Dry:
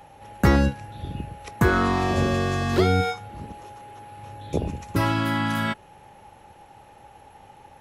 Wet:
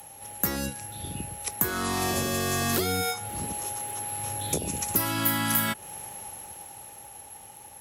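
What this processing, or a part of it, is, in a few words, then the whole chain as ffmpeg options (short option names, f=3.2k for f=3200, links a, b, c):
FM broadcast chain: -filter_complex "[0:a]highpass=53,dynaudnorm=f=290:g=13:m=11.5dB,acrossover=split=140|2800[a][b][c];[a]acompressor=threshold=-35dB:ratio=4[d];[b]acompressor=threshold=-23dB:ratio=4[e];[c]acompressor=threshold=-40dB:ratio=4[f];[d][e][f]amix=inputs=3:normalize=0,aemphasis=mode=production:type=50fm,alimiter=limit=-14.5dB:level=0:latency=1:release=406,asoftclip=type=hard:threshold=-18.5dB,lowpass=f=15k:w=0.5412,lowpass=f=15k:w=1.3066,aemphasis=mode=production:type=50fm,volume=-2.5dB"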